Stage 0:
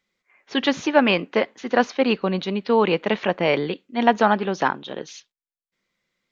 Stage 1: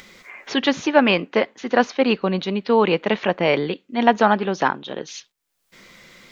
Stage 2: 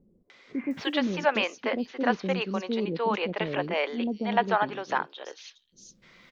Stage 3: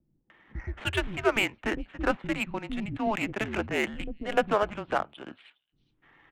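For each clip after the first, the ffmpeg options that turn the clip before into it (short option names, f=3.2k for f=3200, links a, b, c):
-af "acompressor=mode=upward:threshold=-26dB:ratio=2.5,volume=1.5dB"
-filter_complex "[0:a]acrossover=split=420|5700[a][b][c];[b]adelay=300[d];[c]adelay=710[e];[a][d][e]amix=inputs=3:normalize=0,volume=-7dB"
-af "aemphasis=mode=production:type=bsi,highpass=f=230:t=q:w=0.5412,highpass=f=230:t=q:w=1.307,lowpass=f=3.5k:t=q:w=0.5176,lowpass=f=3.5k:t=q:w=0.7071,lowpass=f=3.5k:t=q:w=1.932,afreqshift=-210,adynamicsmooth=sensitivity=5:basefreq=1.9k"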